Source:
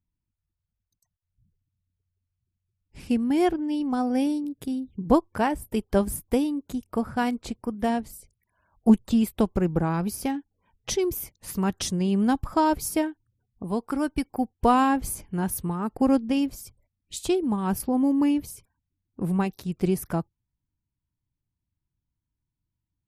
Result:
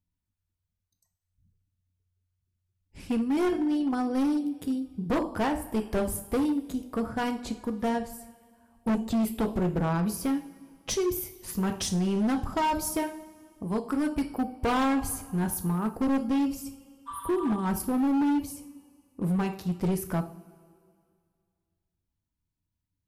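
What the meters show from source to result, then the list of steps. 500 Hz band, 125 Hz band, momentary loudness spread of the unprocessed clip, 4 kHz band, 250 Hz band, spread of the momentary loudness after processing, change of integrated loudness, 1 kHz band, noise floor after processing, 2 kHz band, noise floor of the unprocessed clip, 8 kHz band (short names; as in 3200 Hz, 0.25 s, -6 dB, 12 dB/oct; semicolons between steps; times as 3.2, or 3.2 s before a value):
-3.5 dB, -1.5 dB, 10 LU, -2.0 dB, -3.0 dB, 9 LU, -3.0 dB, -4.0 dB, -84 dBFS, -1.5 dB, -85 dBFS, -1.5 dB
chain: spectral repair 17.1–17.54, 940–8900 Hz after; two-slope reverb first 0.43 s, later 2.2 s, from -18 dB, DRR 6 dB; overloaded stage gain 20.5 dB; gain -2 dB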